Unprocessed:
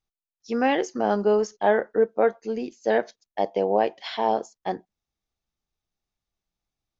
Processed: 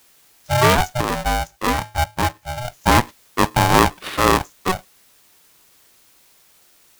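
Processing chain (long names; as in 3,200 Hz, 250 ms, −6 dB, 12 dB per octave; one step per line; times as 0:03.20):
running median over 9 samples
in parallel at −11.5 dB: bit-depth reduction 8 bits, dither triangular
0:01.01–0:02.65: on the sum: tuned comb filter 480 Hz, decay 0.37 s, mix 60%
ring modulator with a square carrier 370 Hz
level +5.5 dB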